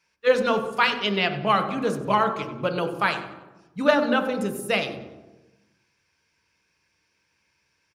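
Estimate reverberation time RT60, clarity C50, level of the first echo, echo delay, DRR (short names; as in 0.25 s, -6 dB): 1.1 s, 9.0 dB, -16.5 dB, 95 ms, 6.0 dB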